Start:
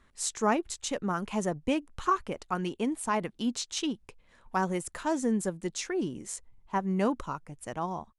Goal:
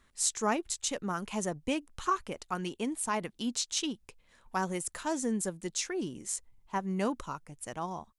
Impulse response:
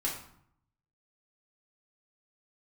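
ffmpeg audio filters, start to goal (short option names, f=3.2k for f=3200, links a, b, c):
-af "highshelf=f=3.1k:g=8.5,volume=-4dB"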